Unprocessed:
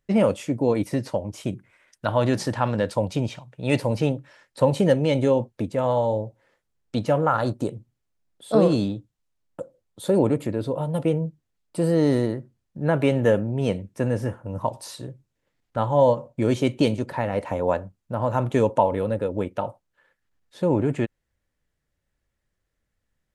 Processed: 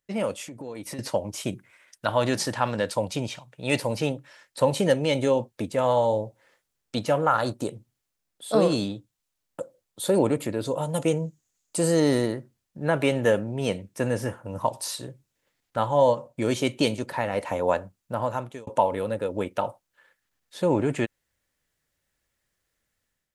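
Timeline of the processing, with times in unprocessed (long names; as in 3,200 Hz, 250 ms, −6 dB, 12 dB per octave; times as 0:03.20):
0:00.42–0:00.99: downward compressor 5 to 1, threshold −32 dBFS
0:10.65–0:12.00: parametric band 6,800 Hz +14 dB 0.45 octaves
0:18.15–0:18.67: fade out
whole clip: spectral tilt +2 dB per octave; automatic gain control gain up to 9 dB; level −6.5 dB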